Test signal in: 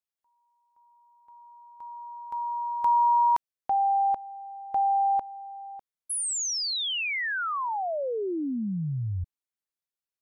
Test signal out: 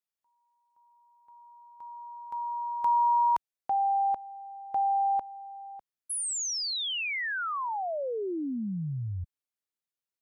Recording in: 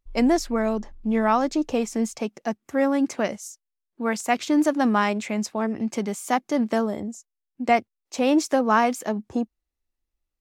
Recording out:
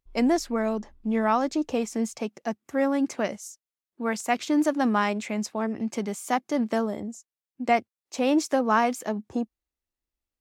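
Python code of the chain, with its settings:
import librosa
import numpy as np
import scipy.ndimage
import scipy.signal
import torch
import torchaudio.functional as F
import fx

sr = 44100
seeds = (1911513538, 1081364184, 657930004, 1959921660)

y = fx.highpass(x, sr, hz=57.0, slope=6)
y = F.gain(torch.from_numpy(y), -2.5).numpy()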